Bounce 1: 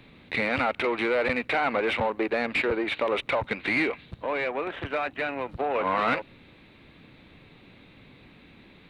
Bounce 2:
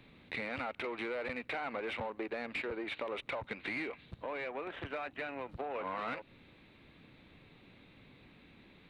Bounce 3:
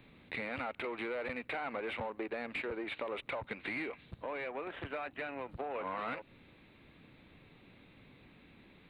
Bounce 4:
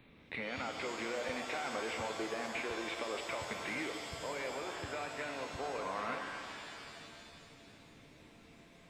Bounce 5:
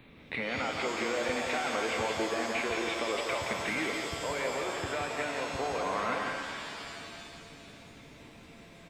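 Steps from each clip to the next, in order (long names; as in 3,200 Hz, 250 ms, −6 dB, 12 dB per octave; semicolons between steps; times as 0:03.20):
downward compressor 2.5 to 1, threshold −31 dBFS, peak gain reduction 7.5 dB; level −7 dB
parametric band 5,800 Hz −14.5 dB 0.48 octaves
reverb with rising layers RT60 2.5 s, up +7 semitones, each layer −2 dB, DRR 4.5 dB; level −2 dB
single-tap delay 172 ms −5.5 dB; level +6 dB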